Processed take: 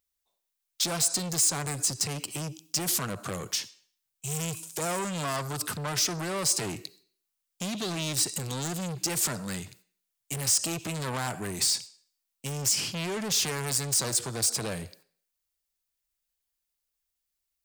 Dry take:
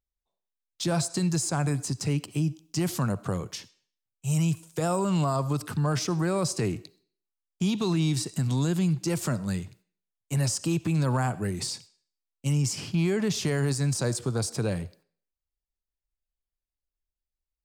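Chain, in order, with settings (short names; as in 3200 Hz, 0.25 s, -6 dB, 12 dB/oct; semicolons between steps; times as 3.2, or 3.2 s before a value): soft clip -30.5 dBFS, distortion -8 dB; tilt +2.5 dB/oct; gain +4.5 dB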